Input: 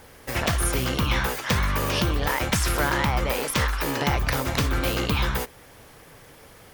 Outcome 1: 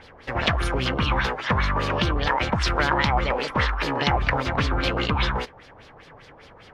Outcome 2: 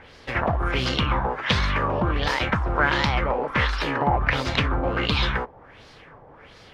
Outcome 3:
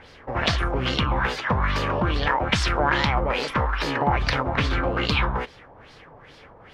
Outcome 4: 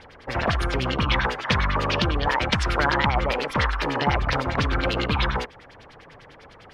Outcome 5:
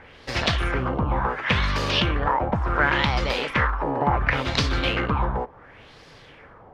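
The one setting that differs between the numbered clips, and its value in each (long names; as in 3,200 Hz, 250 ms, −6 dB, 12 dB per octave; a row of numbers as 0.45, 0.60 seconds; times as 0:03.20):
auto-filter low-pass, speed: 5, 1.4, 2.4, 10, 0.7 Hertz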